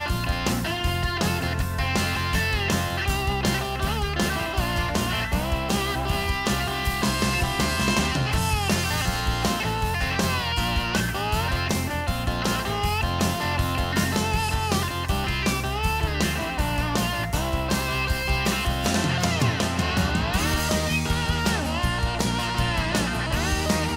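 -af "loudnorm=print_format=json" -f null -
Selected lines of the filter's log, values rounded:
"input_i" : "-24.4",
"input_tp" : "-10.5",
"input_lra" : "1.4",
"input_thresh" : "-34.4",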